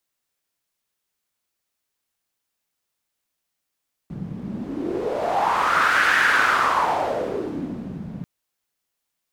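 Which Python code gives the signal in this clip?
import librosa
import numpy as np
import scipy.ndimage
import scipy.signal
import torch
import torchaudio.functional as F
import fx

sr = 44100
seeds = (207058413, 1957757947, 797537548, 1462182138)

y = fx.wind(sr, seeds[0], length_s=4.14, low_hz=170.0, high_hz=1600.0, q=4.5, gusts=1, swing_db=14.5)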